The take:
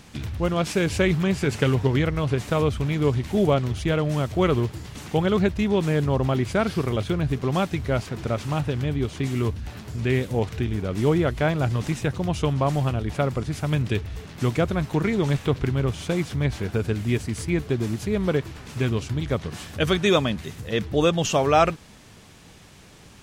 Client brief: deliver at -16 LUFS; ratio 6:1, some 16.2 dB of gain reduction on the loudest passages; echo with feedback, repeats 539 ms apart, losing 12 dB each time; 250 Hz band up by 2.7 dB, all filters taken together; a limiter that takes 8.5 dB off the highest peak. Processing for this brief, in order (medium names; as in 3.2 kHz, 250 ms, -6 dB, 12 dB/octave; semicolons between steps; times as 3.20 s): peaking EQ 250 Hz +4 dB; compression 6:1, threshold -32 dBFS; peak limiter -29 dBFS; feedback delay 539 ms, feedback 25%, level -12 dB; trim +22.5 dB